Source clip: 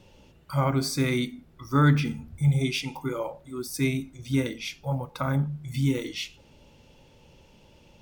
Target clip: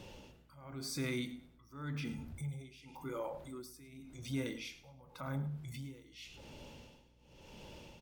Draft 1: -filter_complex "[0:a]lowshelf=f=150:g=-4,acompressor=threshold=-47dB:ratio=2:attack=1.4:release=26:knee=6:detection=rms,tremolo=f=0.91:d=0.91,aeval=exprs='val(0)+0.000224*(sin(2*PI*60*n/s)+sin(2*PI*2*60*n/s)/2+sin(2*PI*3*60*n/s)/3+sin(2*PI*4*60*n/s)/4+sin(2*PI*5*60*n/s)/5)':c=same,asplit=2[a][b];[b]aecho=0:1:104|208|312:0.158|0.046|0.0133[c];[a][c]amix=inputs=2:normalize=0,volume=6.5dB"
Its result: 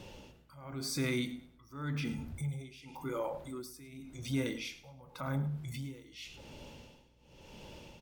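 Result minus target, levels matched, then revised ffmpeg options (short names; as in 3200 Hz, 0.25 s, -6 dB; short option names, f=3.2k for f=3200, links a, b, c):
compressor: peak gain reduction -4 dB
-filter_complex "[0:a]lowshelf=f=150:g=-4,acompressor=threshold=-55.5dB:ratio=2:attack=1.4:release=26:knee=6:detection=rms,tremolo=f=0.91:d=0.91,aeval=exprs='val(0)+0.000224*(sin(2*PI*60*n/s)+sin(2*PI*2*60*n/s)/2+sin(2*PI*3*60*n/s)/3+sin(2*PI*4*60*n/s)/4+sin(2*PI*5*60*n/s)/5)':c=same,asplit=2[a][b];[b]aecho=0:1:104|208|312:0.158|0.046|0.0133[c];[a][c]amix=inputs=2:normalize=0,volume=6.5dB"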